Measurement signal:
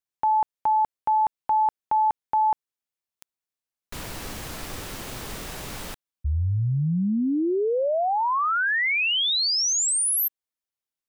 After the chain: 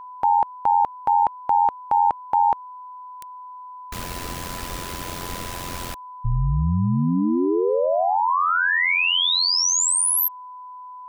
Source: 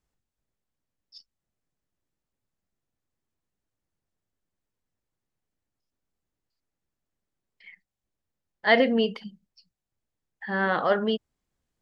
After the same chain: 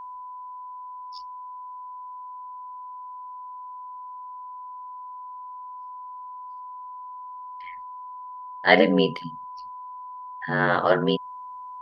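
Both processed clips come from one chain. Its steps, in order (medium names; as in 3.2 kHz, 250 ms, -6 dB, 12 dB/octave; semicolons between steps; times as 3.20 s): ring modulator 44 Hz; whistle 1 kHz -42 dBFS; trim +6 dB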